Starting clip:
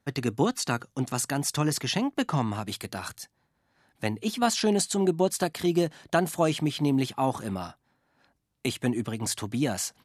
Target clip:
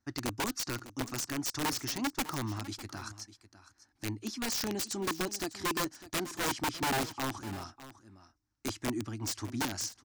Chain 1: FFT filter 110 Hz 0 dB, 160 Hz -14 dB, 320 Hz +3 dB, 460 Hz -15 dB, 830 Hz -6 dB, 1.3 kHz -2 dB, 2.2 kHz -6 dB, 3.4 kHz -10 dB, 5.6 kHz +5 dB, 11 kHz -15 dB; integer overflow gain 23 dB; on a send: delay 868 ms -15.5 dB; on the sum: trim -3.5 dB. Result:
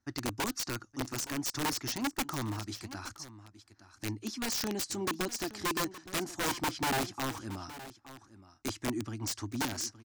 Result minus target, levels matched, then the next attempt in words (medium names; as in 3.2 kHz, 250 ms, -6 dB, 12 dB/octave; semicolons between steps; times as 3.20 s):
echo 266 ms late
FFT filter 110 Hz 0 dB, 160 Hz -14 dB, 320 Hz +3 dB, 460 Hz -15 dB, 830 Hz -6 dB, 1.3 kHz -2 dB, 2.2 kHz -6 dB, 3.4 kHz -10 dB, 5.6 kHz +5 dB, 11 kHz -15 dB; integer overflow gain 23 dB; on a send: delay 602 ms -15.5 dB; on the sum: trim -3.5 dB